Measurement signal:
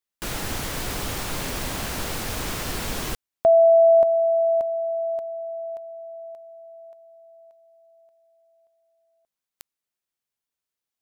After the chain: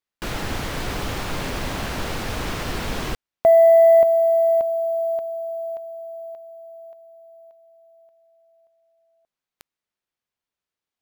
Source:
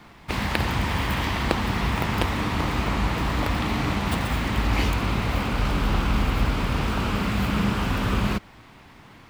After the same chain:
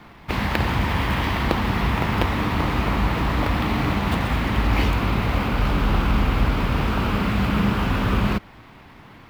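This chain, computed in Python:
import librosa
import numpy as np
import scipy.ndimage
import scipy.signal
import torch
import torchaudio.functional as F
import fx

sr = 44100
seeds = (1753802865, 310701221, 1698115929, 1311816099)

p1 = fx.high_shelf(x, sr, hz=6700.0, db=-8.5)
p2 = fx.sample_hold(p1, sr, seeds[0], rate_hz=16000.0, jitter_pct=0)
p3 = p1 + (p2 * librosa.db_to_amplitude(-7.0))
y = 10.0 ** (-4.0 / 20.0) * np.tanh(p3 / 10.0 ** (-4.0 / 20.0))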